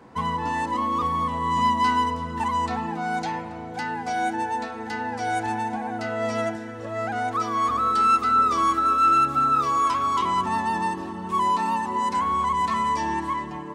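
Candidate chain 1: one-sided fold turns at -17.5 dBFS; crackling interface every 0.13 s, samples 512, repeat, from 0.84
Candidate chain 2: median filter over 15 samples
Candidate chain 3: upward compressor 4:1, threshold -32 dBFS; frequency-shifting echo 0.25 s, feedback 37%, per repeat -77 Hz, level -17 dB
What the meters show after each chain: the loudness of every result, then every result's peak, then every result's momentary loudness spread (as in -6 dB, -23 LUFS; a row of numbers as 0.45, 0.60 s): -24.0, -24.5, -23.5 LUFS; -11.0, -13.5, -10.0 dBFS; 10, 11, 11 LU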